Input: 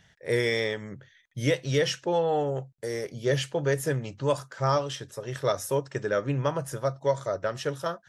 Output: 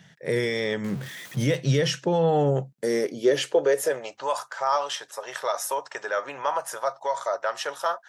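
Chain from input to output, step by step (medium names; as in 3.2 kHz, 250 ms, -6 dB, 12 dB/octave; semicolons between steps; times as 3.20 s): 0.84–1.56 s: jump at every zero crossing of -40 dBFS; peak limiter -21 dBFS, peak gain reduction 8 dB; high-pass sweep 160 Hz -> 830 Hz, 2.49–4.32 s; trim +5 dB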